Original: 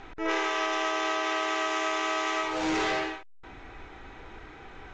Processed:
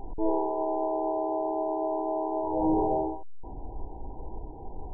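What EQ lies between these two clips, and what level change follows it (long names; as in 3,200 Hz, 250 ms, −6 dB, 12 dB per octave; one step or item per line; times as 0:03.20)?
linear-phase brick-wall low-pass 1,000 Hz
low-shelf EQ 62 Hz +10 dB
+4.0 dB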